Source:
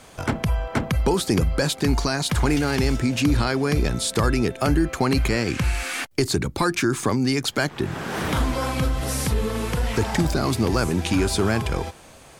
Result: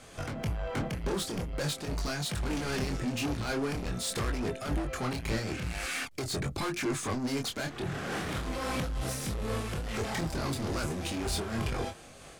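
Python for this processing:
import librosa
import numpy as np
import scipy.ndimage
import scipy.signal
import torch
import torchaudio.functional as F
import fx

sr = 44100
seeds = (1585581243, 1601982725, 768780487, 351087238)

y = scipy.signal.sosfilt(scipy.signal.butter(2, 12000.0, 'lowpass', fs=sr, output='sos'), x)
y = fx.notch(y, sr, hz=930.0, q=6.6)
y = 10.0 ** (-26.5 / 20.0) * np.tanh(y / 10.0 ** (-26.5 / 20.0))
y = fx.chorus_voices(y, sr, voices=2, hz=0.44, base_ms=24, depth_ms=4.6, mix_pct=40)
y = fx.am_noise(y, sr, seeds[0], hz=5.7, depth_pct=60)
y = y * 10.0 ** (3.0 / 20.0)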